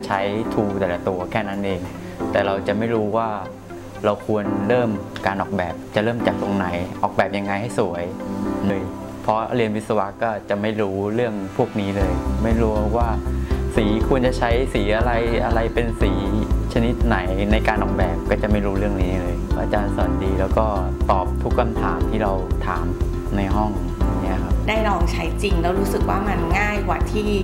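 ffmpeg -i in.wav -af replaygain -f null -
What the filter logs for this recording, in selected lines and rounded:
track_gain = +3.0 dB
track_peak = 0.425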